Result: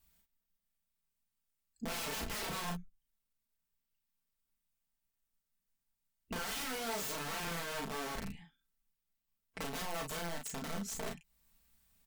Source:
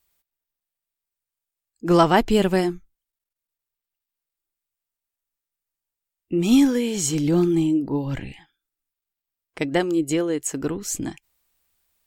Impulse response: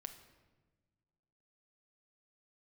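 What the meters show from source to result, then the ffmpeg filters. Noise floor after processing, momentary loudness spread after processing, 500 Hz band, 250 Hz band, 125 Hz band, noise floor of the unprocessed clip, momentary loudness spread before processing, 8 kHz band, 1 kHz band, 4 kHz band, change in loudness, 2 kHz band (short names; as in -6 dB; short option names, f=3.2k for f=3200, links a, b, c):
under -85 dBFS, 8 LU, -21.0 dB, -25.5 dB, -20.0 dB, under -85 dBFS, 13 LU, -12.5 dB, -15.5 dB, -9.5 dB, -18.5 dB, -10.0 dB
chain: -af "lowshelf=f=260:t=q:w=1.5:g=8.5,aeval=exprs='(mod(8.41*val(0)+1,2)-1)/8.41':c=same,acompressor=threshold=-42dB:ratio=3,aecho=1:1:4.5:0.55,aecho=1:1:35|47:0.631|0.224,volume=-4.5dB"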